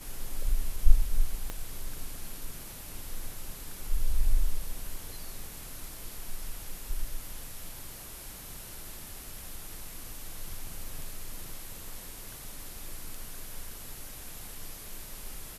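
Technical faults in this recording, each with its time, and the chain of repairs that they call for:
1.5 pop -20 dBFS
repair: de-click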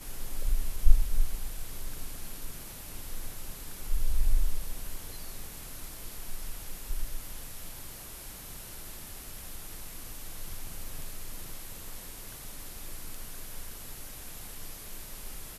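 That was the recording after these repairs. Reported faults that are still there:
1.5 pop

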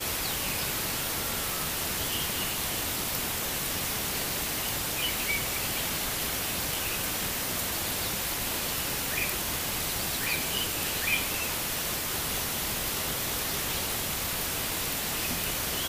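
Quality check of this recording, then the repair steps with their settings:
1.5 pop
10.24 pop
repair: de-click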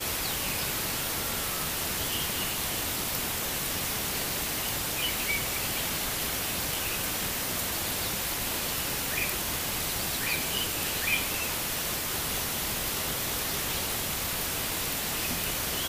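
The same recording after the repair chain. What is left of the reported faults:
none

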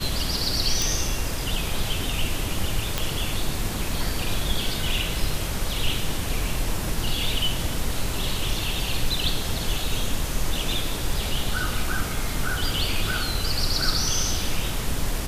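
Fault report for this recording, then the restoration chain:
0.82 pop
2.98 pop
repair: de-click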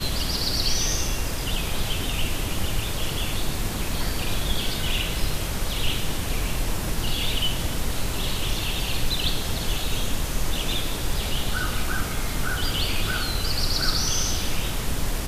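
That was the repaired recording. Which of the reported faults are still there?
none

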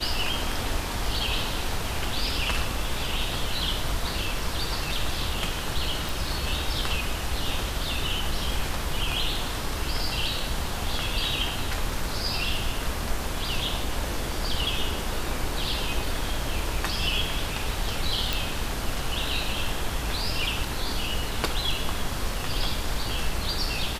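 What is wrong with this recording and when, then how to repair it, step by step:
6.09 pop
18.33 pop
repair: de-click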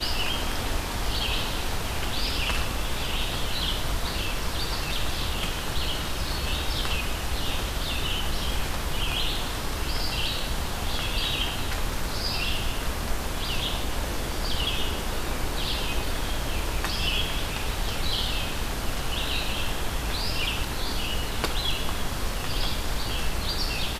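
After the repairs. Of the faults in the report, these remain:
none

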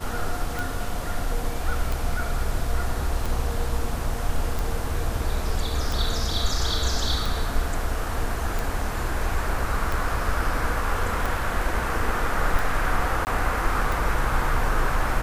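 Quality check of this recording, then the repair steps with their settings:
tick 45 rpm
13.25–13.27 gap 19 ms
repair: de-click; interpolate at 13.25, 19 ms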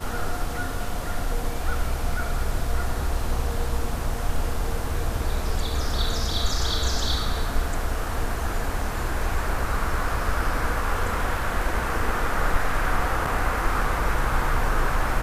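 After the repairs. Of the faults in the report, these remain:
none

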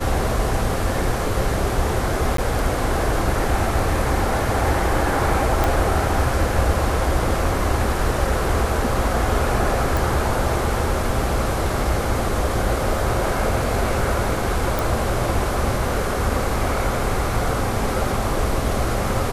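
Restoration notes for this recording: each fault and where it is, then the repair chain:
2.37–2.38 gap 13 ms
5.64 pop
9.97 pop
14.79 pop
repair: de-click; interpolate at 2.37, 13 ms

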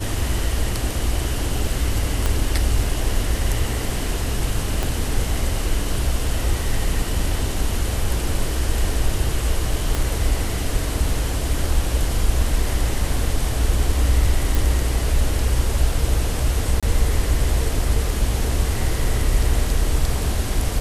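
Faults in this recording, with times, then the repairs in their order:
2.26 pop -7 dBFS
4.83 pop
9.95 pop -8 dBFS
14.55 pop
16.8–16.83 gap 26 ms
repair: de-click; interpolate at 16.8, 26 ms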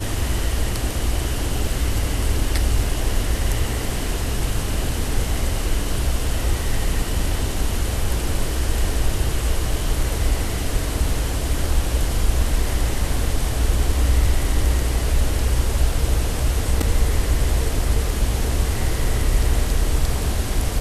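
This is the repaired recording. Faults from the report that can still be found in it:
2.26 pop
4.83 pop
9.95 pop

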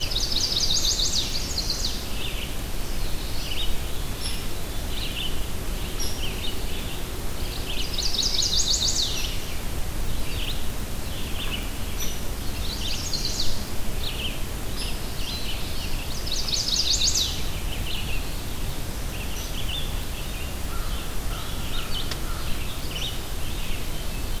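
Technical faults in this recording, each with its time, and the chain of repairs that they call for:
crackle 56/s -29 dBFS
11.63 pop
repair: de-click

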